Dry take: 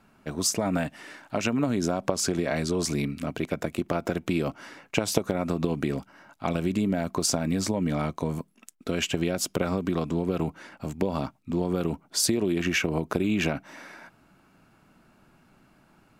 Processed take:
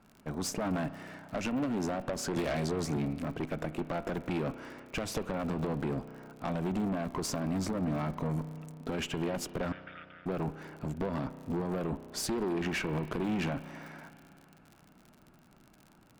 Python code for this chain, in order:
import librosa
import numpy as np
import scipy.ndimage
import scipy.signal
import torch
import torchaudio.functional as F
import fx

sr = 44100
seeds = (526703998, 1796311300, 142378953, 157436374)

y = fx.high_shelf(x, sr, hz=2200.0, db=-10.5)
y = fx.tube_stage(y, sr, drive_db=29.0, bias=0.5)
y = fx.dmg_crackle(y, sr, seeds[0], per_s=65.0, level_db=-44.0)
y = fx.brickwall_bandpass(y, sr, low_hz=1200.0, high_hz=3700.0, at=(9.72, 10.26))
y = fx.rev_spring(y, sr, rt60_s=2.9, pass_ms=(32,), chirp_ms=35, drr_db=13.0)
y = fx.band_squash(y, sr, depth_pct=100, at=(2.36, 2.97))
y = y * librosa.db_to_amplitude(1.0)